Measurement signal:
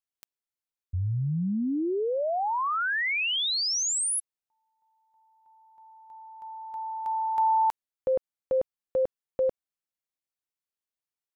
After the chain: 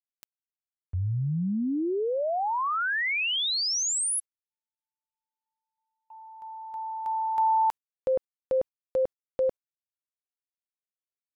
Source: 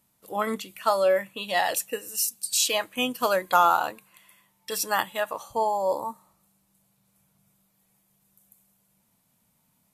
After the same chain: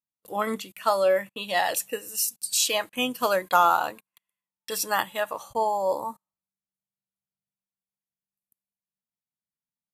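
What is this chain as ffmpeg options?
-af "agate=range=-32dB:threshold=-50dB:ratio=16:release=49:detection=rms"

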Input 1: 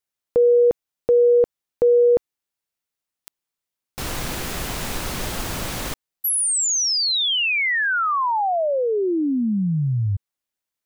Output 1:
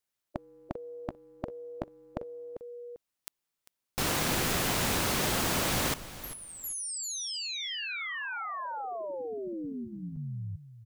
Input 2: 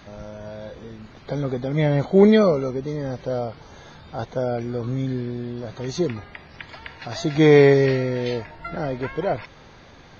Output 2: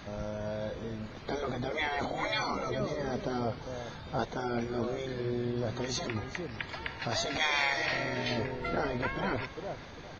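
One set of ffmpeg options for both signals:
-af "aecho=1:1:395|790:0.158|0.0349,afftfilt=real='re*lt(hypot(re,im),0.251)':imag='im*lt(hypot(re,im),0.251)':win_size=1024:overlap=0.75"

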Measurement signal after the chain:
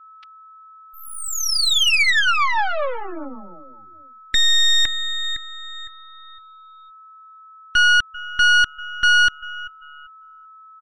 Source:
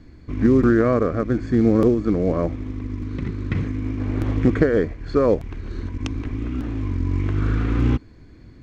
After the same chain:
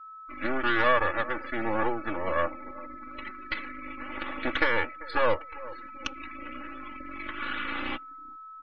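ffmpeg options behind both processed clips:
-filter_complex "[0:a]highpass=640,lowpass=5.3k,asplit=2[a][b];[b]adelay=392,lowpass=f=940:p=1,volume=-16dB,asplit=2[c][d];[d]adelay=392,lowpass=f=940:p=1,volume=0.48,asplit=2[e][f];[f]adelay=392,lowpass=f=940:p=1,volume=0.48,asplit=2[g][h];[h]adelay=392,lowpass=f=940:p=1,volume=0.48[i];[a][c][e][g][i]amix=inputs=5:normalize=0,aeval=exprs='max(val(0),0)':c=same,equalizer=f=2.6k:t=o:w=2.6:g=8,aecho=1:1:3.5:0.78,aeval=exprs='val(0)+0.00794*sin(2*PI*1300*n/s)':c=same,asoftclip=type=tanh:threshold=-8.5dB,afftdn=nr=29:nf=-39"

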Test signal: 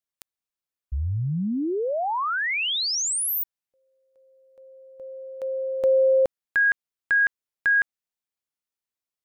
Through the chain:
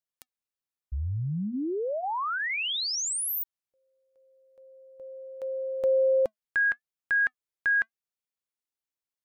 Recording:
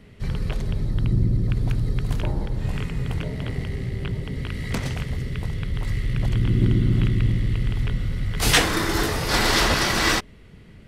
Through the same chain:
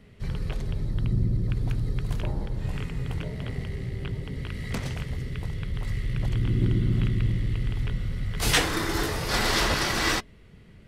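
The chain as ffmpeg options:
-af "flanger=delay=1.5:depth=1.1:regen=-85:speed=0.85:shape=triangular"

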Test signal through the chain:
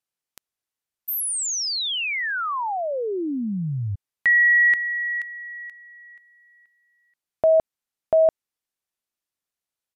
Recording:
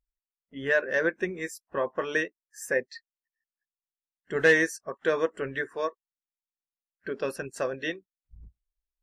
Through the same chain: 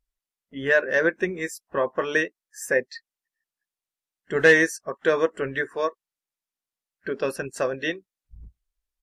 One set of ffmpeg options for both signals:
-af "aresample=32000,aresample=44100,volume=4.5dB"

